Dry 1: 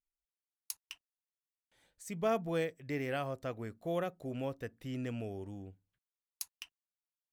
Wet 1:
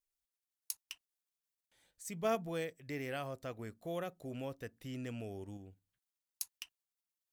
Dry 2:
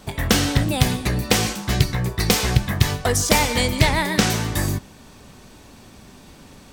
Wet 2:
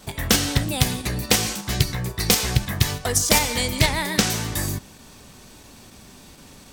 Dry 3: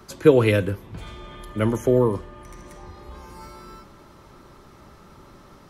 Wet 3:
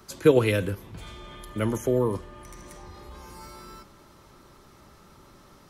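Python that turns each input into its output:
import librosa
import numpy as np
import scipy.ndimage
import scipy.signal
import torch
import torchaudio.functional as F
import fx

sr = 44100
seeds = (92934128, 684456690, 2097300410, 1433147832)

p1 = fx.high_shelf(x, sr, hz=3500.0, db=7.0)
p2 = fx.level_steps(p1, sr, step_db=15)
p3 = p1 + (p2 * librosa.db_to_amplitude(-1.0))
y = p3 * librosa.db_to_amplitude(-7.0)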